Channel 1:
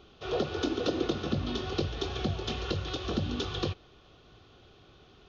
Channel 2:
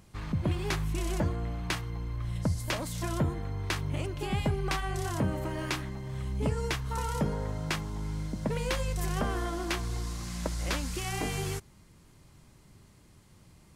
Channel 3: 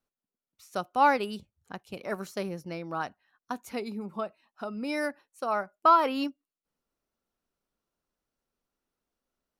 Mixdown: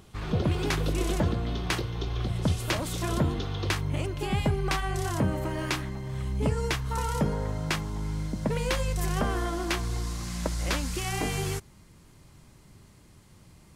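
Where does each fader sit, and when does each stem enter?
-4.5 dB, +3.0 dB, mute; 0.00 s, 0.00 s, mute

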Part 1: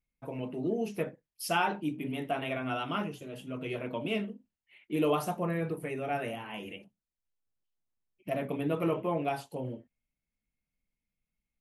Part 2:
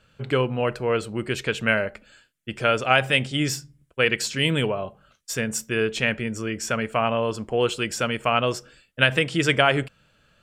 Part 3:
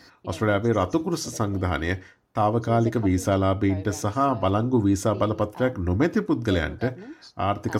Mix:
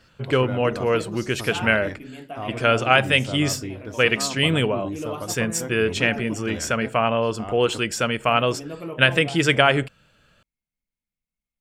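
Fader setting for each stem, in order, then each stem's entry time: -4.0 dB, +2.0 dB, -11.0 dB; 0.00 s, 0.00 s, 0.00 s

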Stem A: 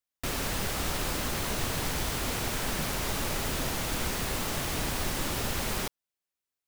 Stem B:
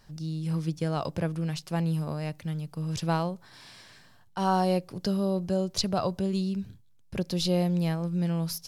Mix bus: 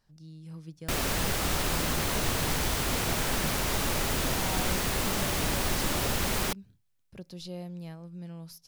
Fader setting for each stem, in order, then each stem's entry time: +2.5 dB, -14.0 dB; 0.65 s, 0.00 s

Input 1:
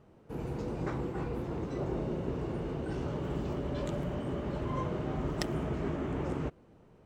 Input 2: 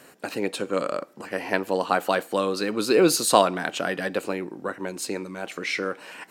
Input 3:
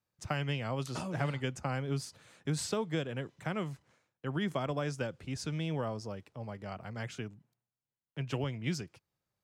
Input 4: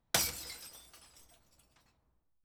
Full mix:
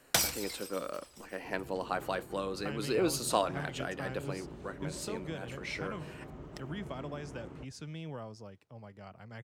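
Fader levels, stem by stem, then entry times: -13.0 dB, -11.5 dB, -7.5 dB, +2.5 dB; 1.15 s, 0.00 s, 2.35 s, 0.00 s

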